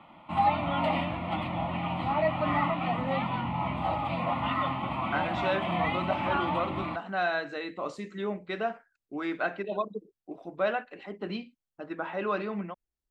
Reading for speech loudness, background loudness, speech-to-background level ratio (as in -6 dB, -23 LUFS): -33.5 LUFS, -30.0 LUFS, -3.5 dB